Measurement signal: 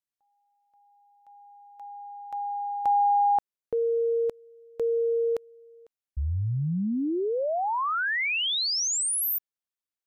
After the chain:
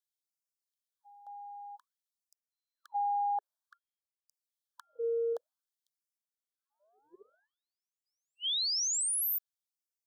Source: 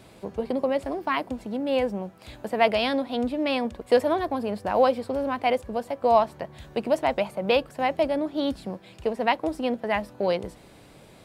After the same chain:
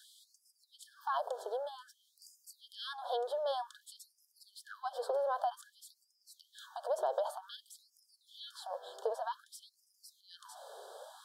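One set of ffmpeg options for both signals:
-af "equalizer=f=690:t=o:w=1.2:g=6.5,acompressor=threshold=-30dB:ratio=20:attack=11:release=38:knee=6:detection=rms,asuperstop=centerf=2300:order=20:qfactor=1.7,afftfilt=real='re*gte(b*sr/1024,370*pow(4900/370,0.5+0.5*sin(2*PI*0.53*pts/sr)))':imag='im*gte(b*sr/1024,370*pow(4900/370,0.5+0.5*sin(2*PI*0.53*pts/sr)))':win_size=1024:overlap=0.75"

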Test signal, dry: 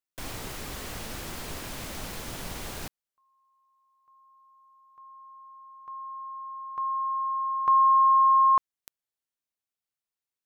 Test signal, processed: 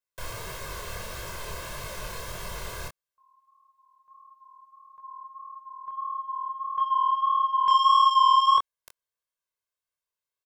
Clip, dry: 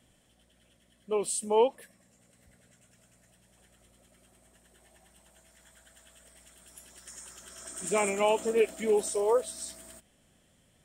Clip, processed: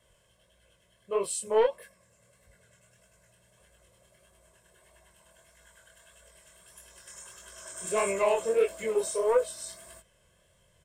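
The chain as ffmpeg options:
-filter_complex "[0:a]aecho=1:1:1.9:0.87,acrossover=split=880|1400[a][b][c];[b]acontrast=80[d];[a][d][c]amix=inputs=3:normalize=0,asoftclip=type=tanh:threshold=-13.5dB,flanger=delay=20:depth=7.7:speed=1.6"

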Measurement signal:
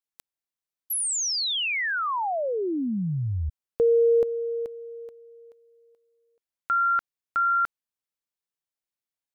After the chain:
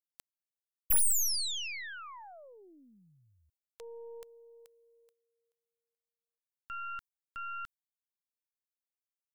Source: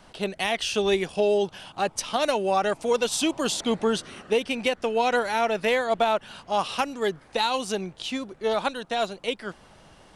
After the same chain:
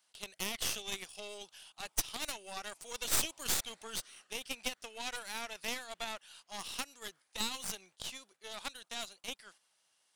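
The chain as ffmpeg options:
-af "agate=range=-7dB:threshold=-46dB:ratio=16:release=147:detection=peak,aderivative,aeval=exprs='0.2*(cos(1*acos(clip(val(0)/0.2,-1,1)))-cos(1*PI/2))+0.0631*(cos(6*acos(clip(val(0)/0.2,-1,1)))-cos(6*PI/2))':c=same,volume=-4dB"

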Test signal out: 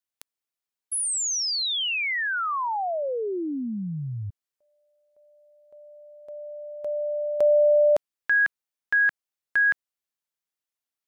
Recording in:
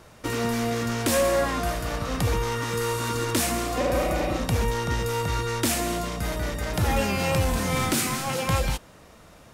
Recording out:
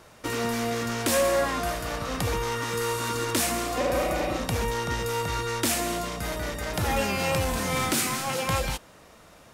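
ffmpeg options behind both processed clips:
-af "lowshelf=f=240:g=-6"

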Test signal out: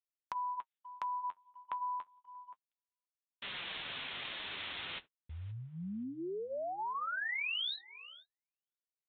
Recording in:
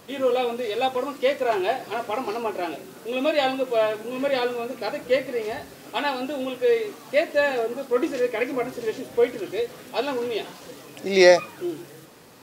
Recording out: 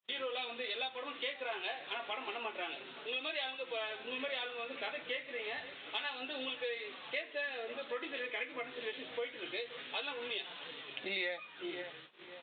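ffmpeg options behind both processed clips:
-filter_complex "[0:a]aresample=8000,aresample=44100,highpass=f=130:p=1,asplit=2[a][b];[b]adelay=525,lowpass=f=1.4k:p=1,volume=-20dB,asplit=2[c][d];[d]adelay=525,lowpass=f=1.4k:p=1,volume=0.35,asplit=2[e][f];[f]adelay=525,lowpass=f=1.4k:p=1,volume=0.35[g];[c][e][g]amix=inputs=3:normalize=0[h];[a][h]amix=inputs=2:normalize=0,flanger=delay=5:depth=7.9:regen=-38:speed=0.29:shape=triangular,tiltshelf=f=970:g=-4,agate=range=-44dB:threshold=-51dB:ratio=16:detection=peak,crystalizer=i=9:c=0,acompressor=threshold=-30dB:ratio=5,volume=-7dB"

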